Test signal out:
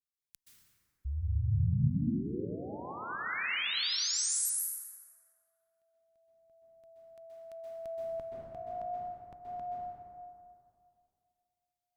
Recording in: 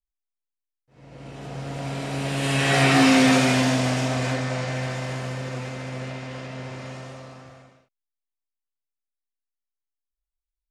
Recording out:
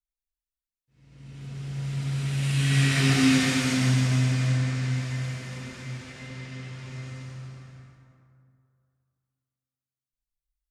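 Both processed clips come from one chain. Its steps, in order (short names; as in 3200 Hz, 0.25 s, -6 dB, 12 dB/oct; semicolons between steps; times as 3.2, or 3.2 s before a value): passive tone stack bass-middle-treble 6-0-2; plate-style reverb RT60 2.5 s, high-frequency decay 0.45×, pre-delay 0.115 s, DRR -6 dB; gain +7.5 dB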